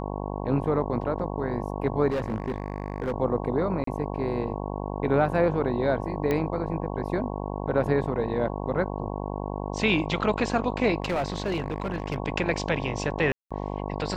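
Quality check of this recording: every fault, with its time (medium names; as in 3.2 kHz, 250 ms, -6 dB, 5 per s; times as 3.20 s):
buzz 50 Hz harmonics 22 -32 dBFS
2.10–3.12 s: clipped -23.5 dBFS
3.84–3.87 s: dropout 33 ms
6.31 s: pop -14 dBFS
11.02–12.18 s: clipped -22.5 dBFS
13.32–13.51 s: dropout 186 ms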